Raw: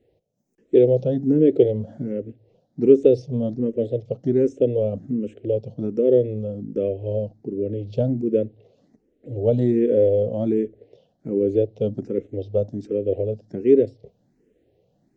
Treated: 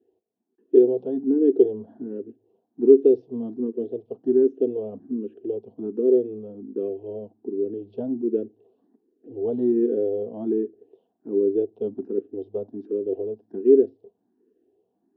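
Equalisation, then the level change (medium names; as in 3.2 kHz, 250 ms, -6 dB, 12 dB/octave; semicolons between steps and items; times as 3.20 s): cabinet simulation 170–2900 Hz, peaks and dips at 180 Hz +5 dB, 250 Hz +4 dB, 390 Hz +7 dB, 630 Hz +6 dB, 1 kHz +3 dB, 1.8 kHz +5 dB; static phaser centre 570 Hz, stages 6; band-stop 1.3 kHz, Q 15; -4.5 dB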